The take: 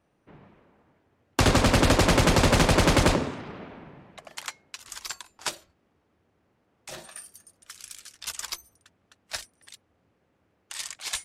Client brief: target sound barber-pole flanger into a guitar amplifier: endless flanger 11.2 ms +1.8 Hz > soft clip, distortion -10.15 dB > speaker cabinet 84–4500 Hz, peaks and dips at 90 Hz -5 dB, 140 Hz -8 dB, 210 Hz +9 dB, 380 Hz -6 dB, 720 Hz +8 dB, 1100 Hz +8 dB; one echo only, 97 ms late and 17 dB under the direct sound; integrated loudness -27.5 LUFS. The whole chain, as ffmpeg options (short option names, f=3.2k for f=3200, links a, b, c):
-filter_complex "[0:a]aecho=1:1:97:0.141,asplit=2[a][b];[b]adelay=11.2,afreqshift=1.8[c];[a][c]amix=inputs=2:normalize=1,asoftclip=threshold=-23dB,highpass=84,equalizer=f=90:t=q:w=4:g=-5,equalizer=f=140:t=q:w=4:g=-8,equalizer=f=210:t=q:w=4:g=9,equalizer=f=380:t=q:w=4:g=-6,equalizer=f=720:t=q:w=4:g=8,equalizer=f=1.1k:t=q:w=4:g=8,lowpass=f=4.5k:w=0.5412,lowpass=f=4.5k:w=1.3066,volume=3dB"